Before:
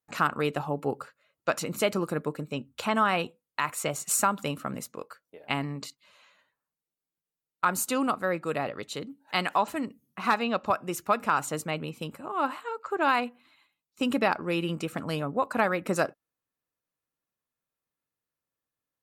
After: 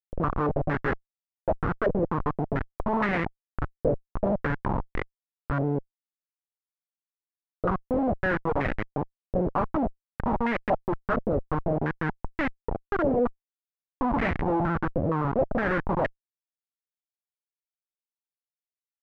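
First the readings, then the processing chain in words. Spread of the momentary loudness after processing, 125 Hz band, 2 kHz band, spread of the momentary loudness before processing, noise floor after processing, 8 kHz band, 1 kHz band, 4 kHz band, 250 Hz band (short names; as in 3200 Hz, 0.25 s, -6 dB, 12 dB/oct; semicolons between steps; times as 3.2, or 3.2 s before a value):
7 LU, +7.0 dB, -0.5 dB, 12 LU, under -85 dBFS, under -30 dB, -1.5 dB, -13.5 dB, +3.5 dB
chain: median filter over 41 samples; Schmitt trigger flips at -35 dBFS; stepped low-pass 4.3 Hz 540–2000 Hz; gain +9 dB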